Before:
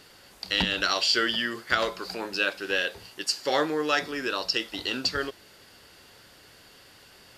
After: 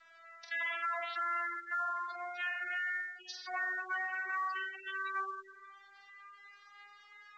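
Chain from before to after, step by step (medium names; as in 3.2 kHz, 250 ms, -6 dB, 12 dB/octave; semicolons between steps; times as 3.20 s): vocoder on a note that slides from E4, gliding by +4 st; high-order bell 1.6 kHz +9 dB 1.1 oct; hard clipper -22 dBFS, distortion -9 dB; low-pass that closes with the level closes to 2.2 kHz, closed at -26 dBFS; spectral selection erased 3.07–3.34 s, 970–2200 Hz; flutter echo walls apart 8 m, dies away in 0.7 s; on a send at -4.5 dB: reverberation RT60 1.1 s, pre-delay 6 ms; on the sum: spectral gate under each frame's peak -20 dB strong; high-pass 750 Hz 24 dB/octave; peak limiter -22 dBFS, peak gain reduction 7.5 dB; trim -7 dB; µ-law 128 kbps 16 kHz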